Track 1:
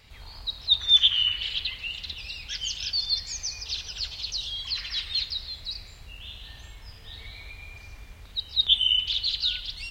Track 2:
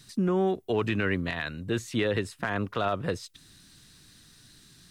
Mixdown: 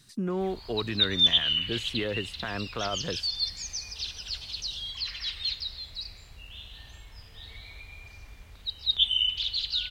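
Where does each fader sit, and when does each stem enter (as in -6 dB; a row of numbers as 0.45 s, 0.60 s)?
-3.0 dB, -4.5 dB; 0.30 s, 0.00 s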